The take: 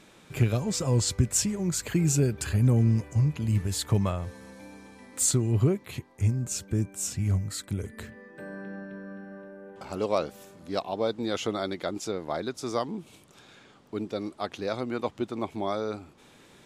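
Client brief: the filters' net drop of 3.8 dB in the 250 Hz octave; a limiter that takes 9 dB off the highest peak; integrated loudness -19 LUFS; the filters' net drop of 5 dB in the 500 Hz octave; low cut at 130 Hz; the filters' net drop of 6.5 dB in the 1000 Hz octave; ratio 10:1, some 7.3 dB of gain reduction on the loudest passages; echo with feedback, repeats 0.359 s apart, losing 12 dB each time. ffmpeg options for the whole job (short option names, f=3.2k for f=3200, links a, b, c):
-af "highpass=130,equalizer=f=250:t=o:g=-3,equalizer=f=500:t=o:g=-3.5,equalizer=f=1k:t=o:g=-7.5,acompressor=threshold=-29dB:ratio=10,alimiter=level_in=2.5dB:limit=-24dB:level=0:latency=1,volume=-2.5dB,aecho=1:1:359|718|1077:0.251|0.0628|0.0157,volume=18.5dB"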